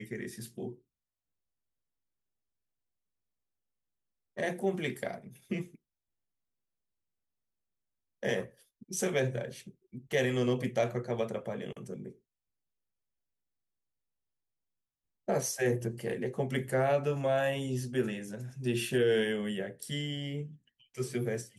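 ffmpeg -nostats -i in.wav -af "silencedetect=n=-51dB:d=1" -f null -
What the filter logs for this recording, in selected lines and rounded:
silence_start: 0.76
silence_end: 4.37 | silence_duration: 3.61
silence_start: 5.75
silence_end: 8.23 | silence_duration: 2.47
silence_start: 12.12
silence_end: 15.28 | silence_duration: 3.16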